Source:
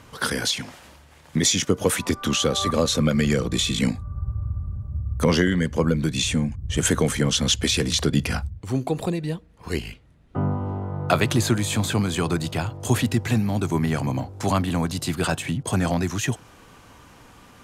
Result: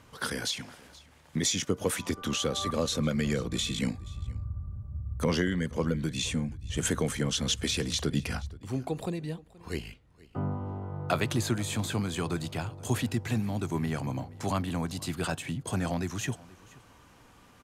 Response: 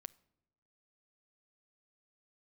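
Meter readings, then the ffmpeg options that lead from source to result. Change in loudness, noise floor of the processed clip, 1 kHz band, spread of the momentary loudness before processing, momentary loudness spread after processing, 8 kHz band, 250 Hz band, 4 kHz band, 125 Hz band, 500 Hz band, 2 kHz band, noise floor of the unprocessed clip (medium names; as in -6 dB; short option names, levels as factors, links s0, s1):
-8.0 dB, -57 dBFS, -8.0 dB, 10 LU, 10 LU, -8.0 dB, -8.0 dB, -8.0 dB, -8.0 dB, -8.0 dB, -8.0 dB, -50 dBFS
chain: -af "aecho=1:1:477:0.0794,volume=0.398"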